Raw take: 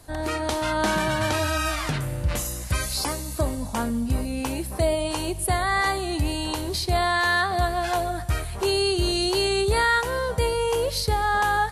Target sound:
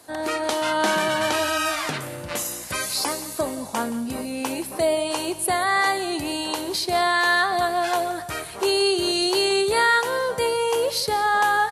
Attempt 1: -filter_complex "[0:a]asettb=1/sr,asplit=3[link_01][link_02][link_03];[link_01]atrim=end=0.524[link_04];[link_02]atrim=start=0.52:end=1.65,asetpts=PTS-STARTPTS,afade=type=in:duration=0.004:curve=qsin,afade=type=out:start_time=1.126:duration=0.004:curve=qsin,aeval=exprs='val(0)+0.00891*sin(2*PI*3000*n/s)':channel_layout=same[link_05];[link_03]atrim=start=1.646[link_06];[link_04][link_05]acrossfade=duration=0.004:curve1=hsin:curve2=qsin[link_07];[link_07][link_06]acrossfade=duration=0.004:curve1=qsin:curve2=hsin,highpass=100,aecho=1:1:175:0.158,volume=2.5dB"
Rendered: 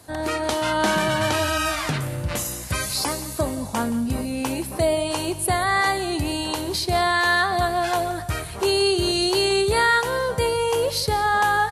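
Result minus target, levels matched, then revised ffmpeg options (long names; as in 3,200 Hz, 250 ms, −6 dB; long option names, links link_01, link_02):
125 Hz band +11.5 dB
-filter_complex "[0:a]asettb=1/sr,asplit=3[link_01][link_02][link_03];[link_01]atrim=end=0.524[link_04];[link_02]atrim=start=0.52:end=1.65,asetpts=PTS-STARTPTS,afade=type=in:duration=0.004:curve=qsin,afade=type=out:start_time=1.126:duration=0.004:curve=qsin,aeval=exprs='val(0)+0.00891*sin(2*PI*3000*n/s)':channel_layout=same[link_05];[link_03]atrim=start=1.646[link_06];[link_04][link_05]acrossfade=duration=0.004:curve1=hsin:curve2=qsin[link_07];[link_07][link_06]acrossfade=duration=0.004:curve1=qsin:curve2=hsin,highpass=260,aecho=1:1:175:0.158,volume=2.5dB"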